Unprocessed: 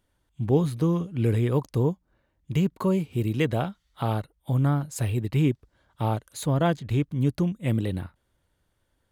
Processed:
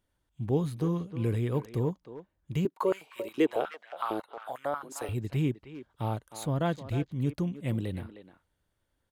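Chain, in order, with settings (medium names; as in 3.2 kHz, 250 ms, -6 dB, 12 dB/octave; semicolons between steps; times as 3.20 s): speakerphone echo 310 ms, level -10 dB; 2.65–5.09 s: step-sequenced high-pass 11 Hz 350–1800 Hz; trim -6 dB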